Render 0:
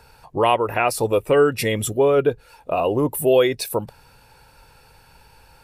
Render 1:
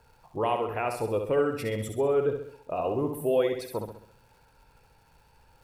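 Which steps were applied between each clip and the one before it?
high shelf 2200 Hz -9 dB; crackle 220/s -45 dBFS; on a send: flutter echo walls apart 11.3 m, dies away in 0.62 s; on the sum: gain -9 dB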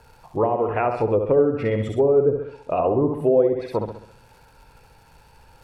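treble ducked by the level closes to 630 Hz, closed at -22.5 dBFS; gain +8.5 dB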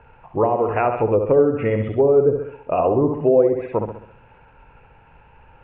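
elliptic low-pass 2800 Hz, stop band 50 dB; gain +3 dB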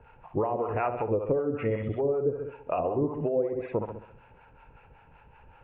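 compressor 3:1, threshold -20 dBFS, peak gain reduction 8 dB; harmonic tremolo 5.3 Hz, depth 70%, crossover 600 Hz; gain -2 dB

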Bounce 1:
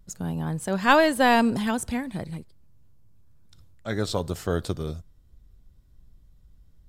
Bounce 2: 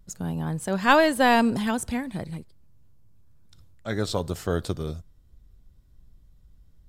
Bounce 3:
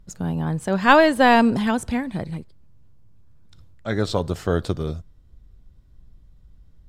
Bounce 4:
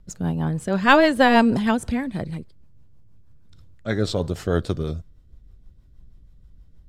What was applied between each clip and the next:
nothing audible
high shelf 6800 Hz -11.5 dB; gain +4.5 dB
rotary speaker horn 6.3 Hz; gain +2 dB

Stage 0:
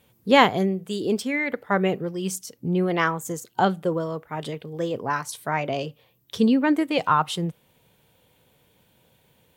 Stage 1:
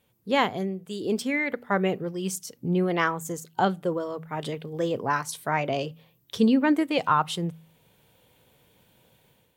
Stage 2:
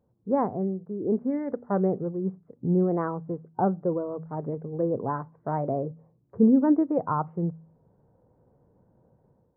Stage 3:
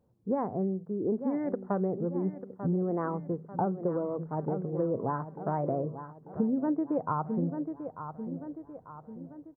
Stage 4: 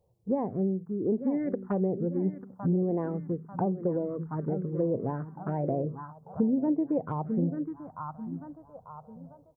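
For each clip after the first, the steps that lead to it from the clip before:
de-hum 80.82 Hz, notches 3; AGC gain up to 8 dB; gain -7.5 dB
Gaussian blur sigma 9 samples; gain +2 dB
feedback echo 0.892 s, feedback 46%, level -13.5 dB; compressor 12:1, threshold -25 dBFS, peak gain reduction 11.5 dB
envelope phaser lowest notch 250 Hz, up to 1400 Hz, full sweep at -25.5 dBFS; gain +3 dB

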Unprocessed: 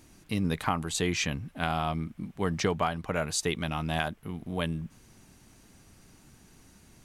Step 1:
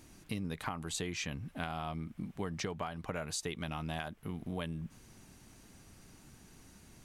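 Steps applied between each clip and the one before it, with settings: compressor 6:1, threshold -34 dBFS, peak gain reduction 11.5 dB; gain -1 dB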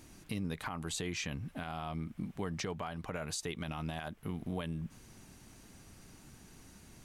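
limiter -29 dBFS, peak gain reduction 9 dB; gain +1.5 dB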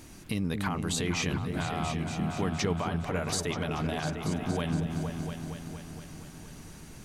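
repeats that get brighter 0.233 s, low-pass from 400 Hz, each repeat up 2 oct, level -3 dB; gain +6.5 dB

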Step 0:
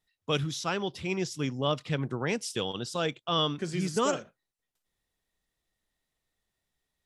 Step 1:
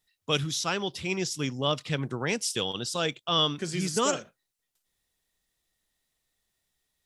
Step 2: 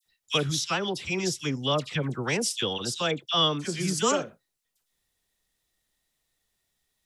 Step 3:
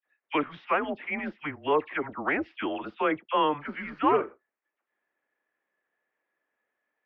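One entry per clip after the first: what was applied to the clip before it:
high shelf 2800 Hz +8 dB
dispersion lows, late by 62 ms, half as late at 1800 Hz; gain +1.5 dB
mistuned SSB -150 Hz 480–2300 Hz; gain +4.5 dB

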